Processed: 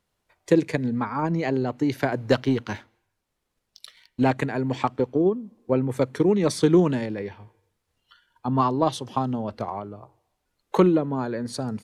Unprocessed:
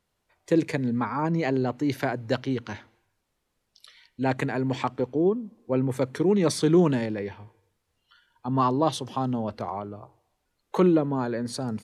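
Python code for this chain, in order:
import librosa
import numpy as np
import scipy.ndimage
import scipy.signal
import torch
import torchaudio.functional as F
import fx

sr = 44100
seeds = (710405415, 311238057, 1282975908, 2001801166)

y = fx.leveller(x, sr, passes=1, at=(2.12, 4.31))
y = fx.transient(y, sr, attack_db=5, sustain_db=-1)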